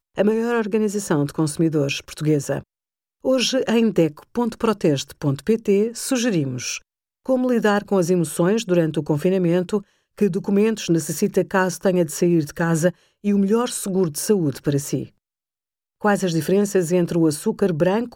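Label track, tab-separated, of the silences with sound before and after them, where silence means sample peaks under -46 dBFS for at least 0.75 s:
15.090000	16.010000	silence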